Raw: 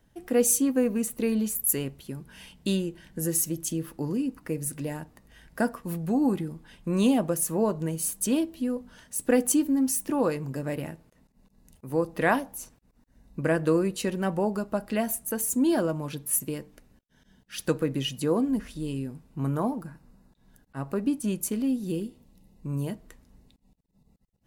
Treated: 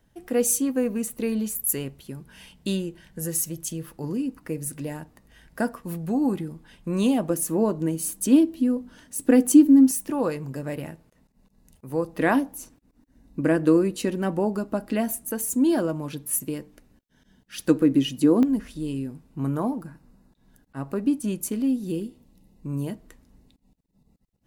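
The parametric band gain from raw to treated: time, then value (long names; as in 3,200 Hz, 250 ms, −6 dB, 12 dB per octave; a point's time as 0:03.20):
parametric band 290 Hz 0.53 octaves
−0.5 dB
from 0:03.03 −7 dB
from 0:04.04 +1 dB
from 0:07.30 +11.5 dB
from 0:09.91 0 dB
from 0:12.20 +10.5 dB
from 0:15.30 +4 dB
from 0:17.69 +13.5 dB
from 0:18.43 +4 dB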